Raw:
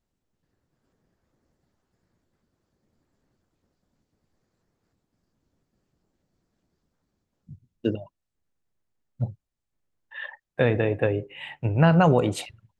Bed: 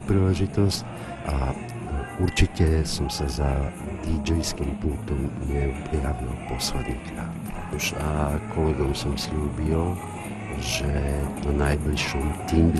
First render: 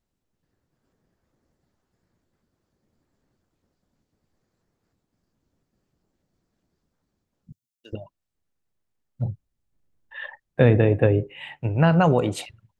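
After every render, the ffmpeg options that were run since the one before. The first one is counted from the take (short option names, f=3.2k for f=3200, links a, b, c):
-filter_complex "[0:a]asettb=1/sr,asplit=3[a][b][c];[a]atrim=end=7.524[d];[b]atrim=start=7.52:end=7.93,asetpts=PTS-STARTPTS,afade=t=in:d=0.004:c=qsin,afade=t=out:st=0.406:d=0.004:c=qsin,aderivative[e];[c]atrim=start=7.926[f];[d][e]acrossfade=d=0.004:c1=hsin:c2=qsin[g];[g][f]acrossfade=d=0.004:c1=qsin:c2=hsin,asettb=1/sr,asplit=3[h][i][j];[h]atrim=end=9.254[k];[i]atrim=start=9.25:end=11.3,asetpts=PTS-STARTPTS,afade=t=in:d=0.004:c=qsin,afade=t=out:st=2.046:d=0.004:c=qsin,lowshelf=f=410:g=9[l];[j]atrim=start=11.296[m];[k][l]acrossfade=d=0.004:c1=hsin:c2=qsin[n];[n][m]acrossfade=d=0.004:c1=qsin:c2=hsin"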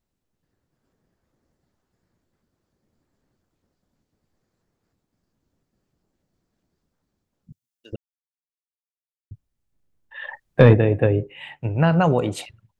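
-filter_complex "[0:a]asplit=3[a][b][c];[a]afade=t=out:st=10.27:d=0.02[d];[b]acontrast=78,afade=t=in:st=10.27:d=0.02,afade=t=out:st=10.73:d=0.02[e];[c]afade=t=in:st=10.73:d=0.02[f];[d][e][f]amix=inputs=3:normalize=0,asplit=3[g][h][i];[g]atrim=end=7.96,asetpts=PTS-STARTPTS,afade=t=out:st=7.956:d=0.004:c=hsin[j];[h]atrim=start=7.96:end=9.31,asetpts=PTS-STARTPTS,volume=0[k];[i]atrim=start=9.31,asetpts=PTS-STARTPTS,afade=t=in:d=0.004:c=hsin[l];[j][k][l]concat=n=3:v=0:a=1"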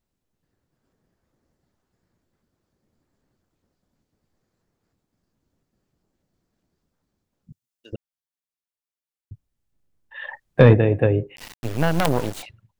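-filter_complex "[0:a]asettb=1/sr,asplit=3[a][b][c];[a]atrim=end=11.364[d];[b]atrim=start=11.36:end=12.43,asetpts=PTS-STARTPTS,afade=t=in:d=0.004:c=qsin,afade=t=out:st=1.066:d=0.004:c=qsin,acrusher=bits=3:dc=4:mix=0:aa=0.000001[e];[c]atrim=start=12.426[f];[d][e]acrossfade=d=0.004:c1=hsin:c2=qsin[g];[g][f]acrossfade=d=0.004:c1=qsin:c2=hsin"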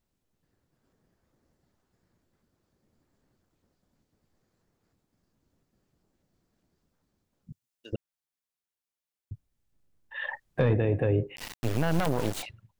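-af "acompressor=threshold=-18dB:ratio=2.5,alimiter=limit=-16dB:level=0:latency=1:release=11"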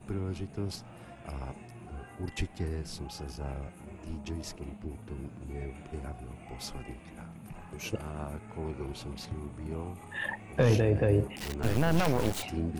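-filter_complex "[1:a]volume=-14dB[a];[0:a][a]amix=inputs=2:normalize=0"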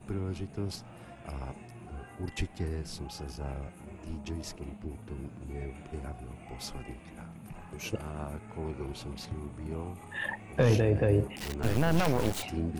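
-af anull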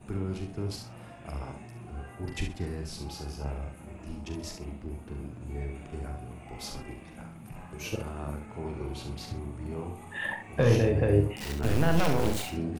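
-af "aecho=1:1:42|69|127:0.422|0.447|0.126"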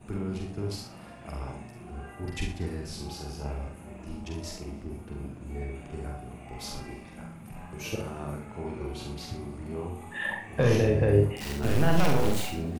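-filter_complex "[0:a]asplit=2[a][b];[b]adelay=47,volume=-5dB[c];[a][c]amix=inputs=2:normalize=0,aecho=1:1:150|300|450:0.0891|0.041|0.0189"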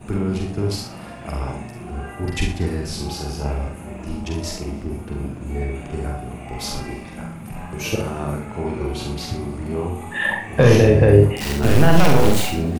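-af "volume=10.5dB,alimiter=limit=-1dB:level=0:latency=1"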